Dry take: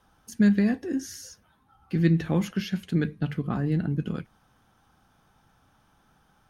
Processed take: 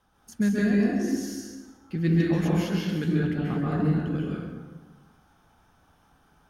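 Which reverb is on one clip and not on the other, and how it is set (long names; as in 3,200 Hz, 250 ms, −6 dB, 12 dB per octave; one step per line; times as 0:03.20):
dense smooth reverb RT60 1.4 s, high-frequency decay 0.6×, pre-delay 120 ms, DRR −5.5 dB
level −4.5 dB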